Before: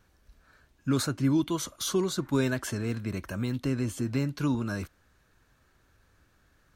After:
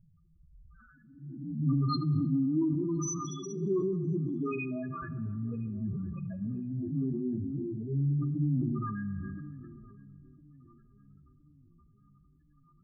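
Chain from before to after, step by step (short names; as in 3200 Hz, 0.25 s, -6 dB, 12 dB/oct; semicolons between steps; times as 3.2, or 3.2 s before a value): spectral swells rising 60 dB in 0.63 s; bell 160 Hz +13 dB 0.36 oct; notches 60/120/180/240 Hz; in parallel at 0 dB: compressor 6:1, threshold -37 dBFS, peak gain reduction 18.5 dB; on the sum: plain phase-vocoder stretch 1.9×; small resonant body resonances 1200/2500 Hz, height 13 dB, ringing for 45 ms; loudest bins only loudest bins 4; on a send: darkening echo 1.014 s, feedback 52%, low-pass 930 Hz, level -21.5 dB; on the sum: plate-style reverb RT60 1.7 s, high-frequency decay 0.5×, DRR 12.5 dB; sustainer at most 21 dB/s; gain -5 dB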